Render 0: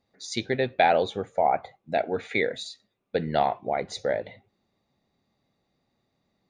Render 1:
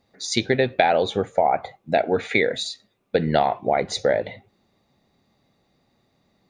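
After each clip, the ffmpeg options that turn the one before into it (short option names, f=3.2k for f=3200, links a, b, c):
-af "acompressor=threshold=-23dB:ratio=6,volume=8.5dB"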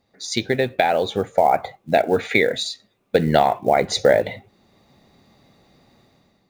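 -af "dynaudnorm=f=140:g=7:m=11.5dB,acrusher=bits=8:mode=log:mix=0:aa=0.000001,volume=-1dB"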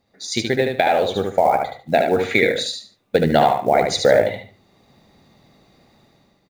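-af "aecho=1:1:74|148|222:0.596|0.149|0.0372"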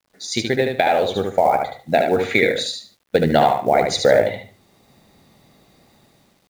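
-af "acrusher=bits=9:mix=0:aa=0.000001"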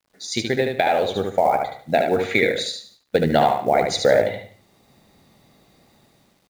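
-af "aecho=1:1:178:0.0794,volume=-2dB"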